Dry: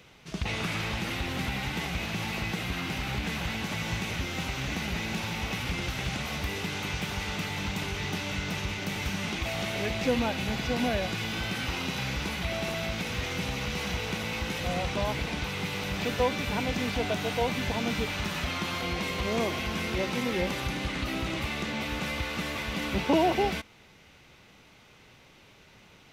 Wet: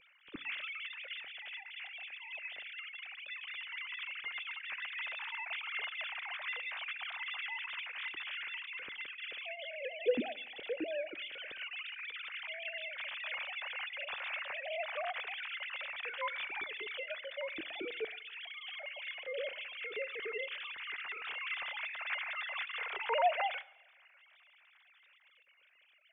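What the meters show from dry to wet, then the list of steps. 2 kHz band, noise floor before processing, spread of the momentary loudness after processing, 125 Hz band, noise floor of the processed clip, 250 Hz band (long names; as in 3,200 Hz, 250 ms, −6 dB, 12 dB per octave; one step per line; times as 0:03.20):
−5.5 dB, −56 dBFS, 6 LU, below −35 dB, −66 dBFS, −20.0 dB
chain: three sine waves on the formant tracks
all-pass phaser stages 2, 0.12 Hz, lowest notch 300–1,100 Hz
coupled-rooms reverb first 0.82 s, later 3.1 s, from −27 dB, DRR 18.5 dB
level −5.5 dB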